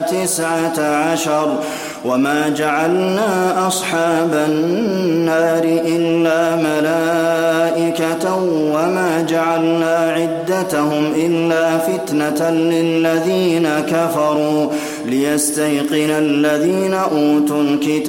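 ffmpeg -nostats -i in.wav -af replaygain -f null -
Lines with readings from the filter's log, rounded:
track_gain = -1.3 dB
track_peak = 0.500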